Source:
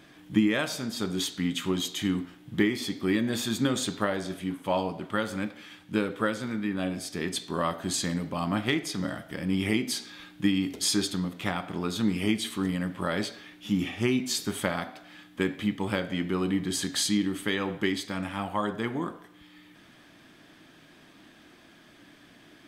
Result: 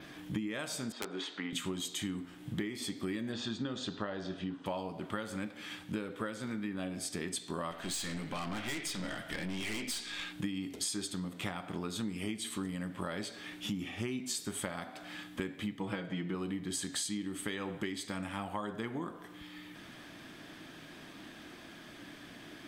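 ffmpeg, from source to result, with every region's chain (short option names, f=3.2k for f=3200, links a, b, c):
-filter_complex "[0:a]asettb=1/sr,asplit=3[a][b][c];[a]atrim=end=0.924[d];[b]atrim=start=0.92:end=1.53,asetpts=PTS-STARTPTS,afade=t=in:d=0.004:c=qsin,afade=t=out:st=0.606:d=0.004:c=qsin,highpass=450,lowpass=2.3k,aeval=exprs='(mod(15.8*val(0)+1,2)-1)/15.8':c=same[e];[c]atrim=start=1.526[f];[d][e]acrossfade=d=0.004:c1=hsin:c2=qsin[g];[g][f]acrossfade=d=0.004:c1=qsin:c2=hsin,asettb=1/sr,asplit=3[h][i][j];[h]atrim=end=3.324[k];[i]atrim=start=3.32:end=4.66,asetpts=PTS-STARTPTS,afade=t=in:d=0.004:c=qsin,afade=t=out:st=1.336:d=0.004:c=qsin,lowpass=f=5.2k:w=0.5412,lowpass=f=5.2k:w=1.3066,bandreject=f=2.2k:w=5.9[l];[j]atrim=start=4.656[m];[k][l]acrossfade=d=0.004:c1=hsin:c2=qsin[n];[n][m]acrossfade=d=0.004:c1=qsin:c2=hsin,asettb=1/sr,asplit=3[o][p][q];[o]atrim=end=7.714[r];[p]atrim=start=7.71:end=10.33,asetpts=PTS-STARTPTS,afade=t=in:d=0.004:c=qsin,afade=t=out:st=2.616:d=0.004:c=qsin,equalizer=f=2.6k:t=o:w=2:g=9.5,aeval=exprs='(tanh(28.2*val(0)+0.5)-tanh(0.5))/28.2':c=same[s];[q]atrim=start=10.326[t];[r][s]acrossfade=d=0.004:c1=hsin:c2=qsin[u];[u][t]acrossfade=d=0.004:c1=qsin:c2=hsin,asettb=1/sr,asplit=3[v][w][x];[v]atrim=end=15.804[y];[w]atrim=start=15.8:end=16.35,asetpts=PTS-STARTPTS,afade=t=in:d=0.004:c=qsin,afade=t=out:st=0.546:d=0.004:c=qsin,lowpass=f=3.3k:p=1,aecho=1:1:6.2:0.69,atrim=end_sample=24255[z];[x]atrim=start=16.346[aa];[y][z]acrossfade=d=0.004:c1=hsin:c2=qsin[ab];[ab][aa]acrossfade=d=0.004:c1=qsin:c2=hsin,adynamicequalizer=threshold=0.00224:dfrequency=8200:dqfactor=2.8:tfrequency=8200:tqfactor=2.8:attack=5:release=100:ratio=0.375:range=4:mode=boostabove:tftype=bell,acompressor=threshold=-40dB:ratio=5,volume=4dB"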